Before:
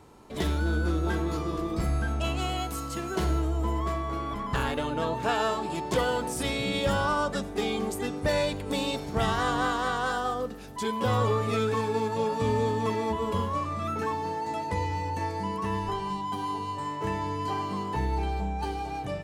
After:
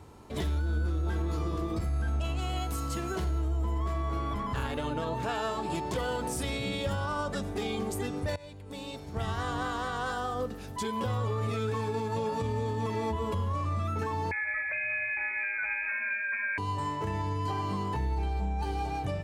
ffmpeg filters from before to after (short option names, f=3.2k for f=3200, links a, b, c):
-filter_complex "[0:a]asettb=1/sr,asplit=3[a][b][c];[a]atrim=end=14.314[d];[b]atrim=start=14.31:end=16.58,asetpts=PTS-STARTPTS,afade=t=in:d=0.004:c=qsin,afade=t=out:st=2.266:d=0.004:c=qsin,lowpass=f=2.2k:t=q:w=0.5098,lowpass=f=2.2k:t=q:w=0.6013,lowpass=f=2.2k:t=q:w=0.9,lowpass=f=2.2k:t=q:w=2.563,afreqshift=-2600[e];[c]atrim=start=16.576[f];[d][e]acrossfade=d=0.004:c1=hsin:c2=qsin[g];[g][f]acrossfade=d=0.004:c1=qsin:c2=hsin,asplit=2[h][i];[h]atrim=end=8.36,asetpts=PTS-STARTPTS,afade=t=out:st=8.356:d=0.004:c=hsin:silence=0.0707946[j];[i]atrim=start=8.36,asetpts=PTS-STARTPTS,afade=t=in:d=2.28:silence=0.0707946[k];[j][k]concat=n=2:v=0:a=1,equalizer=f=85:w=1.8:g=10.5,alimiter=limit=-23.5dB:level=0:latency=1:release=101"